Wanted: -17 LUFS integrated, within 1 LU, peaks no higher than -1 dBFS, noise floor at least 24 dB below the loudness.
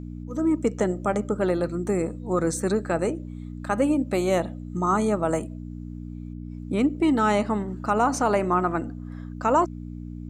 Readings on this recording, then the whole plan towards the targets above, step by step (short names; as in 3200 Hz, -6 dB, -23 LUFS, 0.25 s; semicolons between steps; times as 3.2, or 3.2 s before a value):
hum 60 Hz; harmonics up to 300 Hz; hum level -33 dBFS; loudness -24.5 LUFS; peak -9.5 dBFS; loudness target -17.0 LUFS
-> de-hum 60 Hz, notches 5; gain +7.5 dB